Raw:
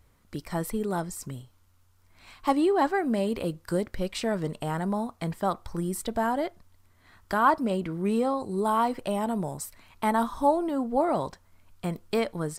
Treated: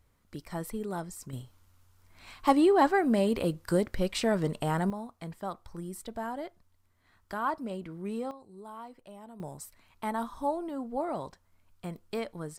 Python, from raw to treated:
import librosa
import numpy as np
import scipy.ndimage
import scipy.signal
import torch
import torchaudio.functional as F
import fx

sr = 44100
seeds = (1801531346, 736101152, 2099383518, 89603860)

y = fx.gain(x, sr, db=fx.steps((0.0, -6.0), (1.33, 1.0), (4.9, -9.5), (8.31, -20.0), (9.4, -8.0)))